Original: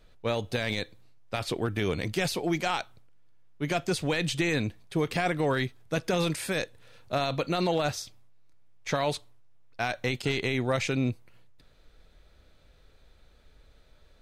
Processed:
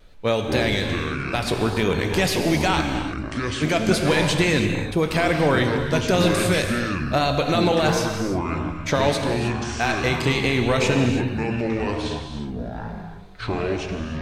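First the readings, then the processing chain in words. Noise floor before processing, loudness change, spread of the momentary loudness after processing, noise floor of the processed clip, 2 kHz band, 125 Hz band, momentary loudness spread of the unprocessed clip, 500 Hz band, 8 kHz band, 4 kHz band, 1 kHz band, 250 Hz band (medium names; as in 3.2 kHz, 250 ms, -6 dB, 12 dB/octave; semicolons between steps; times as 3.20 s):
-59 dBFS, +7.5 dB, 9 LU, -34 dBFS, +9.0 dB, +9.5 dB, 8 LU, +9.0 dB, +8.5 dB, +8.5 dB, +9.0 dB, +10.0 dB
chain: wow and flutter 70 cents; ever faster or slower copies 113 ms, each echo -7 st, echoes 3, each echo -6 dB; gated-style reverb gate 350 ms flat, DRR 4.5 dB; trim +6.5 dB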